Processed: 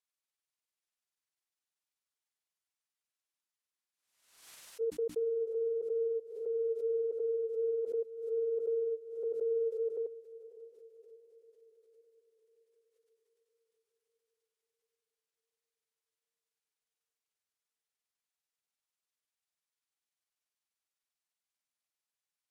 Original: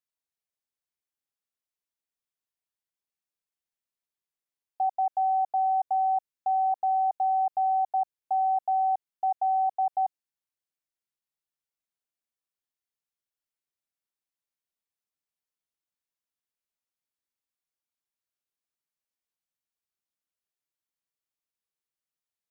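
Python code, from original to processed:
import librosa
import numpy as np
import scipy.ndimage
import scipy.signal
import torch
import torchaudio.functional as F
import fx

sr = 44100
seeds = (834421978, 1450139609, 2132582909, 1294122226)

p1 = fx.pitch_heads(x, sr, semitones=-9.0)
p2 = fx.low_shelf(p1, sr, hz=500.0, db=-11.5)
p3 = fx.hum_notches(p2, sr, base_hz=60, count=5)
p4 = p3 + fx.echo_diffused(p3, sr, ms=573, feedback_pct=54, wet_db=-15.0, dry=0)
y = fx.pre_swell(p4, sr, db_per_s=70.0)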